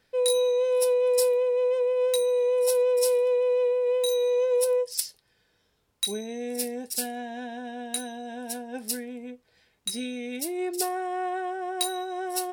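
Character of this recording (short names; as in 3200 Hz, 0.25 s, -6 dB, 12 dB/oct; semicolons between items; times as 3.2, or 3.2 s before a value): noise floor -70 dBFS; spectral tilt -2.0 dB/oct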